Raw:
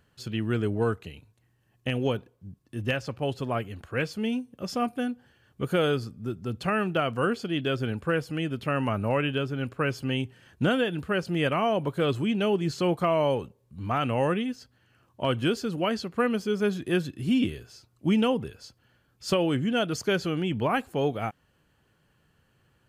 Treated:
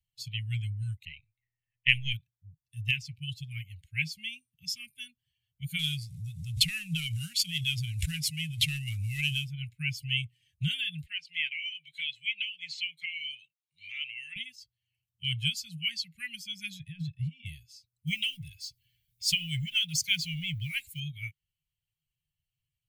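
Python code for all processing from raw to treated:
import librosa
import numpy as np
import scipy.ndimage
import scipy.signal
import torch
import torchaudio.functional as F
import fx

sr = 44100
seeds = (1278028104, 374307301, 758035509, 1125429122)

y = fx.chain(x, sr, fx.halfwave_gain(db=-3.0),
    fx.peak_eq(hz=1700.0, db=12.5, octaves=1.3),
    fx.env_lowpass(base_hz=2900.0, full_db=-24.5), at=(1.05, 2.13))
y = fx.chain(y, sr, fx.cvsd(bps=64000),
    fx.pre_swell(db_per_s=40.0), at=(5.79, 9.51))
y = fx.chain(y, sr, fx.bandpass_q(hz=2500.0, q=0.98),
    fx.band_squash(depth_pct=70), at=(11.06, 14.36))
y = fx.chain(y, sr, fx.lowpass(hz=1600.0, slope=6),
    fx.over_compress(threshold_db=-29.0, ratio=-1.0), at=(16.79, 17.46))
y = fx.chain(y, sr, fx.law_mismatch(coded='mu'),
    fx.notch(hz=230.0, q=5.1), at=(18.07, 21.0))
y = fx.bin_expand(y, sr, power=1.5)
y = scipy.signal.sosfilt(scipy.signal.cheby1(5, 1.0, [160.0, 2100.0], 'bandstop', fs=sr, output='sos'), y)
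y = fx.peak_eq(y, sr, hz=110.0, db=-8.0, octaves=2.9)
y = F.gain(torch.from_numpy(y), 9.0).numpy()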